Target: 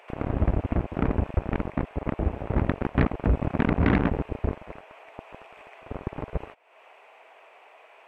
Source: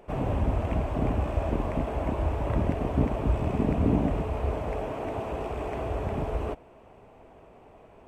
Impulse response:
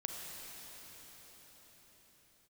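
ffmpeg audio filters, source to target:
-filter_complex "[0:a]acrossover=split=510[s0][s1];[s0]acrusher=bits=3:mix=0:aa=0.5[s2];[s1]acompressor=threshold=0.00282:ratio=12[s3];[s2][s3]amix=inputs=2:normalize=0,equalizer=f=2300:t=o:w=1.4:g=11,volume=1.26"

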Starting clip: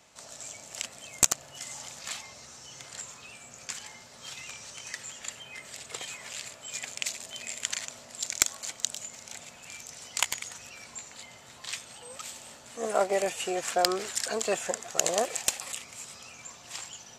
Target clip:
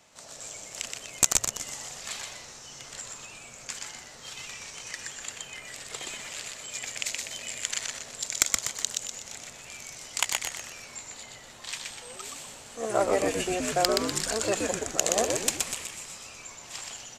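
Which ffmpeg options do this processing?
-filter_complex "[0:a]asplit=7[s0][s1][s2][s3][s4][s5][s6];[s1]adelay=123,afreqshift=-110,volume=0.708[s7];[s2]adelay=246,afreqshift=-220,volume=0.313[s8];[s3]adelay=369,afreqshift=-330,volume=0.136[s9];[s4]adelay=492,afreqshift=-440,volume=0.0603[s10];[s5]adelay=615,afreqshift=-550,volume=0.0266[s11];[s6]adelay=738,afreqshift=-660,volume=0.0116[s12];[s0][s7][s8][s9][s10][s11][s12]amix=inputs=7:normalize=0"

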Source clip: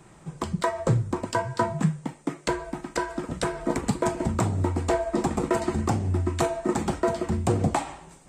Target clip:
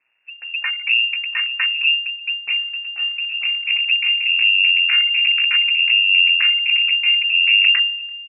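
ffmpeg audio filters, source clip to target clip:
-filter_complex "[0:a]aeval=exprs='max(val(0),0)':c=same,asplit=2[s0][s1];[s1]aecho=0:1:339|678|1017|1356:0.0944|0.0519|0.0286|0.0157[s2];[s0][s2]amix=inputs=2:normalize=0,asubboost=boost=2.5:cutoff=160,afwtdn=0.0501,asplit=2[s3][s4];[s4]aeval=exprs='sgn(val(0))*max(abs(val(0))-0.02,0)':c=same,volume=0.398[s5];[s3][s5]amix=inputs=2:normalize=0,lowpass=f=2400:t=q:w=0.5098,lowpass=f=2400:t=q:w=0.6013,lowpass=f=2400:t=q:w=0.9,lowpass=f=2400:t=q:w=2.563,afreqshift=-2800,volume=1.41"

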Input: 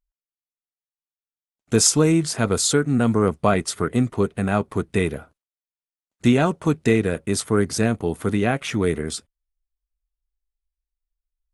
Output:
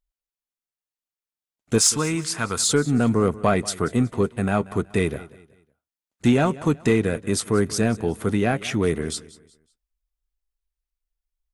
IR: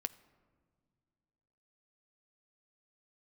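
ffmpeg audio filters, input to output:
-filter_complex "[0:a]asettb=1/sr,asplit=3[s0][s1][s2];[s0]atrim=end=1.784[s3];[s1]atrim=start=1.78:end=2.64,asetpts=PTS-STARTPTS,afade=t=in:d=0.004:c=qsin,afade=t=out:st=0.856:d=0.004:c=qsin,lowshelf=f=800:t=q:w=1.5:g=-7[s4];[s2]atrim=start=2.636[s5];[s3][s4]acrossfade=d=0.004:c1=hsin:c2=qsin[s6];[s6][s5]acrossfade=d=0.004:c1=qsin:c2=hsin,asoftclip=type=tanh:threshold=0.447,aecho=1:1:186|372|558:0.112|0.0393|0.0137"

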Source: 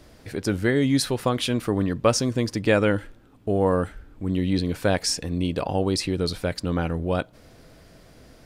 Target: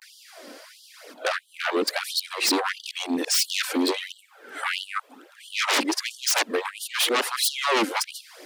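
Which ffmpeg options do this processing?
-filter_complex "[0:a]areverse,flanger=delay=0.3:depth=3.7:regen=14:speed=0.95:shape=triangular,aeval=exprs='val(0)+0.00178*(sin(2*PI*50*n/s)+sin(2*PI*2*50*n/s)/2+sin(2*PI*3*50*n/s)/3+sin(2*PI*4*50*n/s)/4+sin(2*PI*5*50*n/s)/5)':c=same,acrossover=split=200[s0][s1];[s1]aeval=exprs='0.335*sin(PI/2*7.94*val(0)/0.335)':c=same[s2];[s0][s2]amix=inputs=2:normalize=0,afftfilt=real='re*gte(b*sr/1024,210*pow(2900/210,0.5+0.5*sin(2*PI*1.5*pts/sr)))':imag='im*gte(b*sr/1024,210*pow(2900/210,0.5+0.5*sin(2*PI*1.5*pts/sr)))':win_size=1024:overlap=0.75,volume=0.398"

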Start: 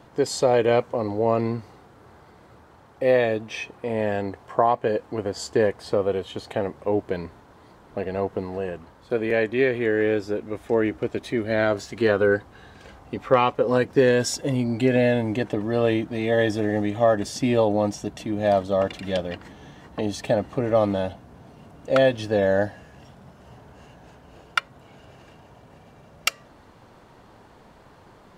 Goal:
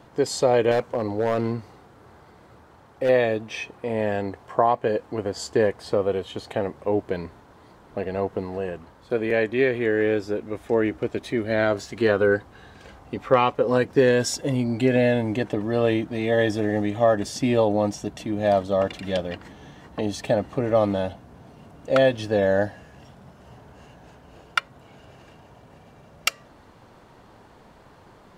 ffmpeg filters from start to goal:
-filter_complex "[0:a]asettb=1/sr,asplit=3[s0][s1][s2];[s0]atrim=end=0.714[s3];[s1]atrim=start=0.71:end=3.09,asetpts=PTS-STARTPTS,afade=t=in:d=0.004:c=qsin,afade=t=out:st=2.376:d=0.004:c=qsin,asoftclip=type=hard:threshold=0.15[s4];[s2]atrim=start=3.086[s5];[s3][s4]acrossfade=d=0.004:c1=hsin:c2=qsin[s6];[s6][s5]acrossfade=d=0.004:c1=qsin:c2=hsin"

